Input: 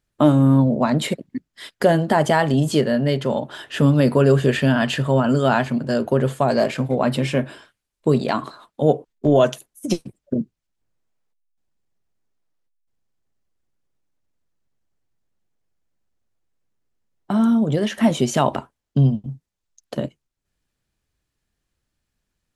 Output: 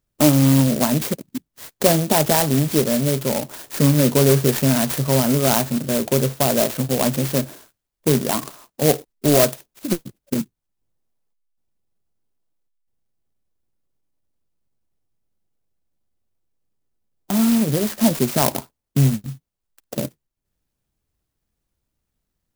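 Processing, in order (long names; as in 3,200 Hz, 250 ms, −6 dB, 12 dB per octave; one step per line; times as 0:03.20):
converter with an unsteady clock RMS 0.15 ms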